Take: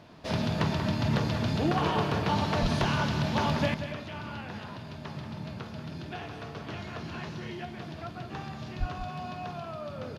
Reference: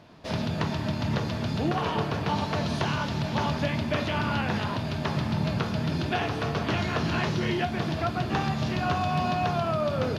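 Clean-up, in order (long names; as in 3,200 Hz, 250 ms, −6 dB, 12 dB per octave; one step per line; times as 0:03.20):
clipped peaks rebuilt −17.5 dBFS
0:02.61–0:02.73: high-pass filter 140 Hz 24 dB per octave
0:08.79–0:08.91: high-pass filter 140 Hz 24 dB per octave
echo removal 185 ms −9.5 dB
level 0 dB, from 0:03.74 +12 dB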